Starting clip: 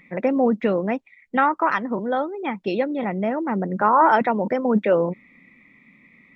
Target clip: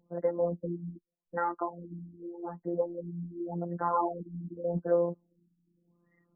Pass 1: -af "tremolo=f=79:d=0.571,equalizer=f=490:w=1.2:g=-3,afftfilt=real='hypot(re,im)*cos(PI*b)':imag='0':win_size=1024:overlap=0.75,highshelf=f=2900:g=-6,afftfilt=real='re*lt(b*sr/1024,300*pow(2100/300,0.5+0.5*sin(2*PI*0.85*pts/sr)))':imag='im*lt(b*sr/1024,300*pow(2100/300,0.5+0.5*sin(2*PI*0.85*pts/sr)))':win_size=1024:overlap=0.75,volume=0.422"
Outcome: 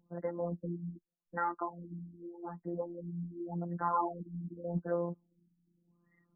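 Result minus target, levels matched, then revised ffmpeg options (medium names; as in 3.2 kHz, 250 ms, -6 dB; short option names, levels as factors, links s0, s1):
500 Hz band -3.0 dB
-af "tremolo=f=79:d=0.571,equalizer=f=490:w=1.2:g=5.5,afftfilt=real='hypot(re,im)*cos(PI*b)':imag='0':win_size=1024:overlap=0.75,highshelf=f=2900:g=-6,afftfilt=real='re*lt(b*sr/1024,300*pow(2100/300,0.5+0.5*sin(2*PI*0.85*pts/sr)))':imag='im*lt(b*sr/1024,300*pow(2100/300,0.5+0.5*sin(2*PI*0.85*pts/sr)))':win_size=1024:overlap=0.75,volume=0.422"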